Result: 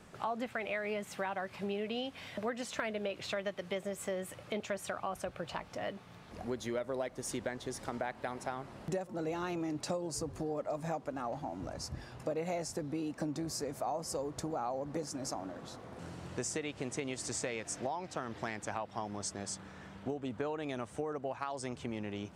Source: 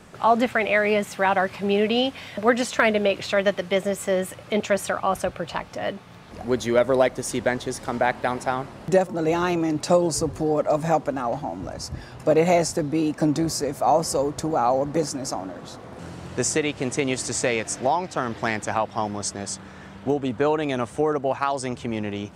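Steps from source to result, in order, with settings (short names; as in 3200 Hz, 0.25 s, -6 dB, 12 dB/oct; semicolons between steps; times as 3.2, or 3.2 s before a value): compressor 4:1, threshold -26 dBFS, peak gain reduction 11.5 dB; gain -8.5 dB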